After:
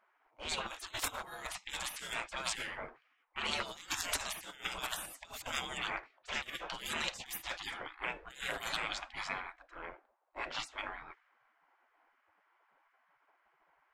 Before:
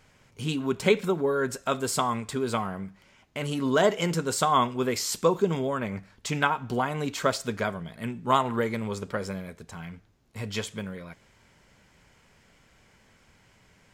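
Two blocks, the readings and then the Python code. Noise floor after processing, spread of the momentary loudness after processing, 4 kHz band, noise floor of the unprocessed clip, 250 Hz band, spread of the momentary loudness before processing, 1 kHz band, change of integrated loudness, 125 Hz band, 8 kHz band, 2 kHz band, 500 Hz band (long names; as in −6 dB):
−75 dBFS, 9 LU, −3.5 dB, −61 dBFS, −24.0 dB, 15 LU, −14.0 dB, −11.5 dB, −24.0 dB, −7.0 dB, −5.0 dB, −21.5 dB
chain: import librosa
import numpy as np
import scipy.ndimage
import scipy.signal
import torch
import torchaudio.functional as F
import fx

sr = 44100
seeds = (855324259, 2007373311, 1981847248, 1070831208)

y = fx.env_lowpass(x, sr, base_hz=440.0, full_db=-22.0)
y = fx.over_compress(y, sr, threshold_db=-29.0, ratio=-0.5)
y = fx.spec_gate(y, sr, threshold_db=-25, keep='weak')
y = F.gain(torch.from_numpy(y), 9.0).numpy()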